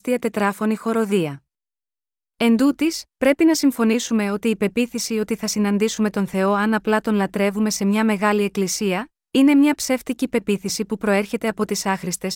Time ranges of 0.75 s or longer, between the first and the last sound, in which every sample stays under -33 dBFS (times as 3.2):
1.36–2.4